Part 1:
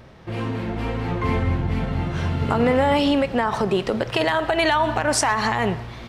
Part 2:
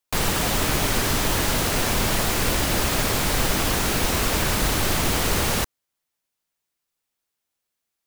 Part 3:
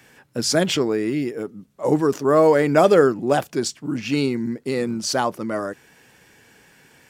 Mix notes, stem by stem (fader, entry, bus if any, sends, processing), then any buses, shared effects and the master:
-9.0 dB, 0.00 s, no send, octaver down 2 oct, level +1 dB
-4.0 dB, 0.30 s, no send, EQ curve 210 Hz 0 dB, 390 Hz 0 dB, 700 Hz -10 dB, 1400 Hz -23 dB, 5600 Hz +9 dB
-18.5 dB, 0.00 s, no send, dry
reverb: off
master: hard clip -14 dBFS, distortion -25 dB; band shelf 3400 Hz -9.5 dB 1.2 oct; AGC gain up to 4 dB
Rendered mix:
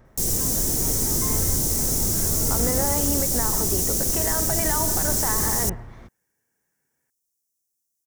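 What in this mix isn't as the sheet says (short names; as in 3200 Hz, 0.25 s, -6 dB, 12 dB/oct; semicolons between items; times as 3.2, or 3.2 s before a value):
stem 2: entry 0.30 s -> 0.05 s; stem 3 -18.5 dB -> -26.5 dB; master: missing AGC gain up to 4 dB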